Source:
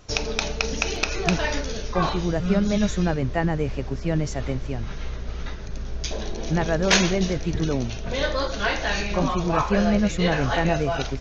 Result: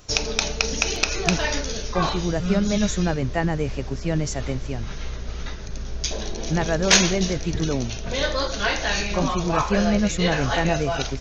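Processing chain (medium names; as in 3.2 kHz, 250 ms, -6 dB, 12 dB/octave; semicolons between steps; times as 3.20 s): treble shelf 5.4 kHz +11 dB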